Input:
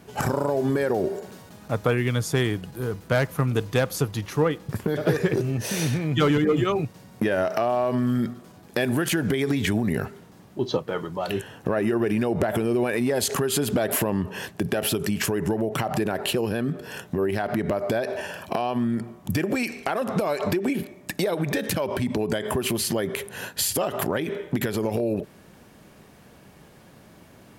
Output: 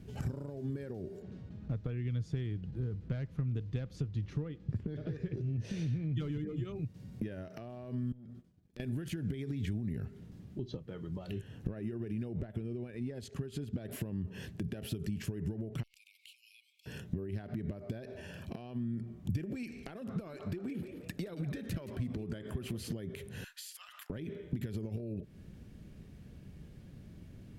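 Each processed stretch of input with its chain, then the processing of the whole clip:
1.22–6.17 s: low-pass 5.2 kHz + tape noise reduction on one side only decoder only
8.12–8.80 s: expander -37 dBFS + compression 8:1, threshold -39 dBFS + transformer saturation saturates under 2.6 kHz
12.41–13.85 s: expander -21 dBFS + treble shelf 9.1 kHz -11 dB
15.83–16.86 s: brick-wall FIR high-pass 2.1 kHz + compression 3:1, threshold -47 dBFS
20.09–22.93 s: peaking EQ 1.3 kHz +7.5 dB 0.66 oct + frequency-shifting echo 173 ms, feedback 31%, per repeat +100 Hz, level -11.5 dB
23.44–24.10 s: steep high-pass 1.1 kHz + compression 3:1, threshold -33 dBFS
whole clip: treble shelf 5.2 kHz -12 dB; compression 5:1, threshold -33 dBFS; amplifier tone stack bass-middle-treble 10-0-1; trim +15 dB

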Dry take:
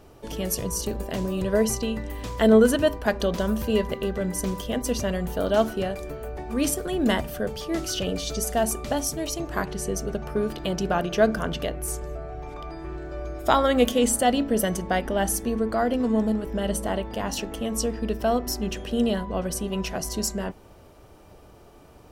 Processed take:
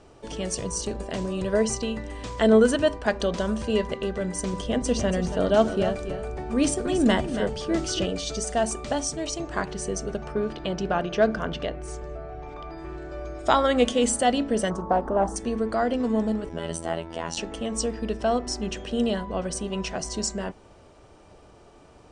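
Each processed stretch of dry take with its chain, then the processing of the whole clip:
4.53–8.06 s: bass shelf 500 Hz +5 dB + delay 281 ms -10.5 dB
10.32–12.78 s: hard clipper -10 dBFS + distance through air 94 m
14.70–15.36 s: resonant high shelf 1.6 kHz -13 dB, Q 3 + loudspeaker Doppler distortion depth 0.25 ms
16.49–17.37 s: comb 5.9 ms, depth 39% + robot voice 82.7 Hz
whole clip: steep low-pass 9.4 kHz 96 dB/octave; bass shelf 230 Hz -3.5 dB

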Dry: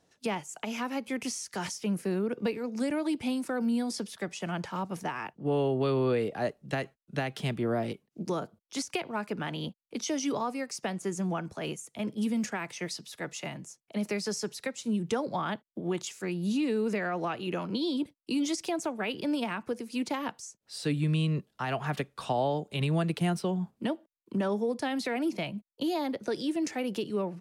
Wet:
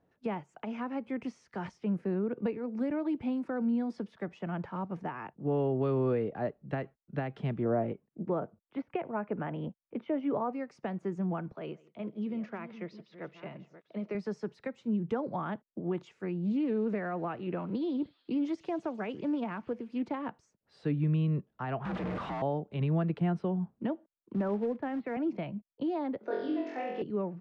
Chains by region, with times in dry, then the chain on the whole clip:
7.65–10.53 s: low-pass 2.9 kHz 24 dB/octave + dynamic bell 590 Hz, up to +5 dB, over -44 dBFS, Q 1.5
11.52–14.15 s: chunks repeated in reverse 495 ms, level -13 dB + cabinet simulation 190–5300 Hz, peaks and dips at 260 Hz -7 dB, 820 Hz -6 dB, 1.7 kHz -5 dB + delay 161 ms -23.5 dB
16.45–20.05 s: feedback echo behind a high-pass 146 ms, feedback 76%, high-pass 4.3 kHz, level -11 dB + loudspeaker Doppler distortion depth 0.12 ms
21.85–22.42 s: one-bit comparator + frequency shift +48 Hz + treble shelf 7.3 kHz -6 dB
24.34–25.17 s: low-pass 2.7 kHz 24 dB/octave + short-mantissa float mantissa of 2-bit + three bands expanded up and down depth 40%
26.18–27.02 s: three-band isolator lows -20 dB, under 320 Hz, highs -24 dB, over 6.2 kHz + flutter echo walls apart 3.9 m, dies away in 0.9 s
whole clip: low-pass 1.7 kHz 12 dB/octave; bass shelf 380 Hz +4 dB; trim -4 dB

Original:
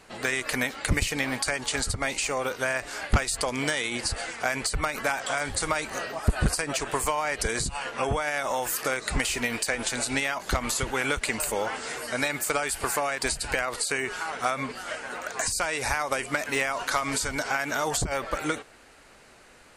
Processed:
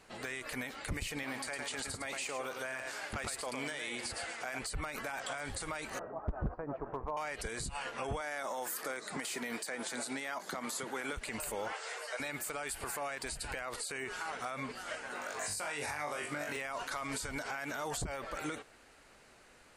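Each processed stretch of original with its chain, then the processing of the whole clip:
1.23–4.59 s: high-pass 240 Hz 6 dB/octave + delay 108 ms -8 dB
5.99–7.17 s: low-pass 1.1 kHz 24 dB/octave + hard clipper -17.5 dBFS
8.21–11.13 s: high-pass 170 Hz 24 dB/octave + peaking EQ 2.7 kHz -7.5 dB 0.35 oct
11.72–12.20 s: steep high-pass 440 Hz + peaking EQ 13 kHz -12.5 dB 0.54 oct
15.13–16.57 s: high-pass 76 Hz 24 dB/octave + flutter echo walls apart 3.5 m, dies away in 0.29 s
whole clip: dynamic bell 5.9 kHz, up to -4 dB, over -41 dBFS, Q 1.7; peak limiter -21.5 dBFS; trim -7 dB

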